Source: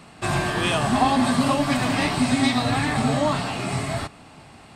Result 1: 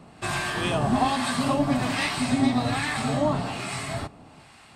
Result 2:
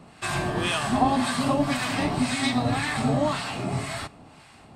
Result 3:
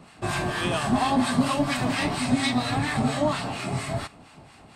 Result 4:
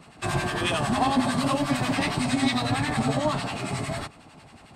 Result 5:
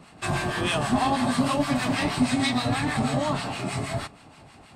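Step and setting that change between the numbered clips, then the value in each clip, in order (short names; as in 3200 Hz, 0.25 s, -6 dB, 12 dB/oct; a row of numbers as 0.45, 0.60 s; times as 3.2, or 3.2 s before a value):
harmonic tremolo, rate: 1.2, 1.9, 4.3, 11, 6.3 Hz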